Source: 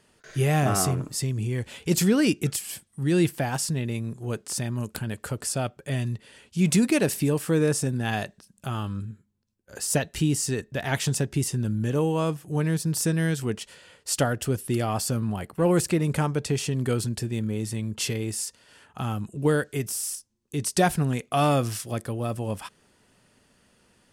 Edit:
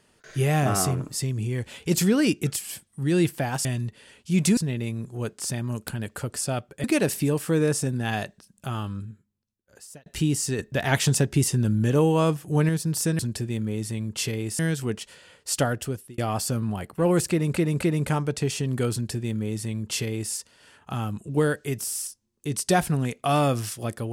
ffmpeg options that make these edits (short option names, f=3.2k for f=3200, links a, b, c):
-filter_complex "[0:a]asplit=12[a][b][c][d][e][f][g][h][i][j][k][l];[a]atrim=end=3.652[m];[b]atrim=start=5.918:end=6.842[n];[c]atrim=start=3.648:end=5.922[o];[d]atrim=start=6.838:end=10.06,asetpts=PTS-STARTPTS,afade=t=out:st=1.932:d=1.29[p];[e]atrim=start=10.06:end=10.592,asetpts=PTS-STARTPTS,afade=t=in:d=0.004:c=hsin[q];[f]atrim=start=10.588:end=12.692,asetpts=PTS-STARTPTS,volume=4dB[r];[g]atrim=start=12.688:end=13.192[s];[h]atrim=start=17.008:end=18.412[t];[i]atrim=start=13.188:end=14.78,asetpts=PTS-STARTPTS,afade=t=out:st=1.152:d=0.44[u];[j]atrim=start=14.78:end=16.162,asetpts=PTS-STARTPTS,afade=t=in:d=0.004:c=hsin[v];[k]atrim=start=15.898:end=16.162[w];[l]atrim=start=15.898[x];[m][n]acrossfade=d=0.004:c1=hsin:c2=hsin[y];[y][o]acrossfade=d=0.004:c1=hsin:c2=hsin[z];[p][q]concat=n=2:v=0:a=1[aa];[z][aa]acrossfade=d=0.004:c1=hsin:c2=hsin[ab];[ab][r]acrossfade=d=0.004:c1=hsin:c2=hsin[ac];[ac][s]acrossfade=d=0.004:c1=hsin:c2=hsin[ad];[ad][t]acrossfade=d=0.004:c1=hsin:c2=hsin[ae];[u][v]concat=n=2:v=0:a=1[af];[ae][af]acrossfade=d=0.004:c1=hsin:c2=hsin[ag];[ag][w]acrossfade=d=0.004:c1=hsin:c2=hsin[ah];[ah][x]acrossfade=d=0.004:c1=hsin:c2=hsin"